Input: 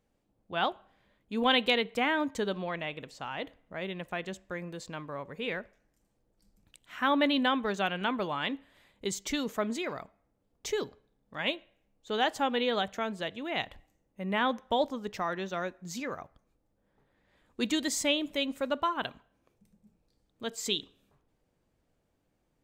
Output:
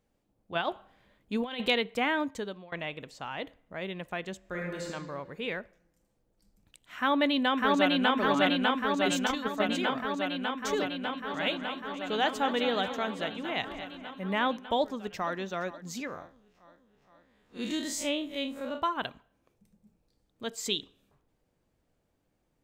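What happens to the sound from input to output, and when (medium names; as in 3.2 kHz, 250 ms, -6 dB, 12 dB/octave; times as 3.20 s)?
0.55–1.69 s: compressor with a negative ratio -30 dBFS, ratio -0.5
2.19–2.72 s: fade out, to -21.5 dB
4.39–4.86 s: reverb throw, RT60 1.6 s, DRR -2.5 dB
6.97–8.15 s: echo throw 600 ms, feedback 80%, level 0 dB
9.27–9.69 s: gate -28 dBFS, range -6 dB
10.81–14.21 s: multi-tap echo 226/487 ms -11/-18.5 dB
14.79–15.35 s: echo throw 470 ms, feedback 65%, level -16.5 dB
16.07–18.82 s: spectral blur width 82 ms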